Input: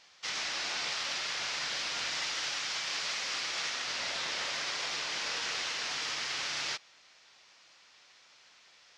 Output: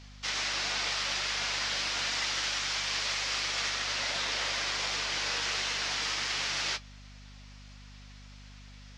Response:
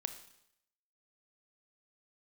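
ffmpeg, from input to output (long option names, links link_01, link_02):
-af "flanger=delay=4.1:depth=6.3:regen=-48:speed=1.4:shape=sinusoidal,aeval=exprs='val(0)+0.00158*(sin(2*PI*50*n/s)+sin(2*PI*2*50*n/s)/2+sin(2*PI*3*50*n/s)/3+sin(2*PI*4*50*n/s)/4+sin(2*PI*5*50*n/s)/5)':channel_layout=same,volume=7dB"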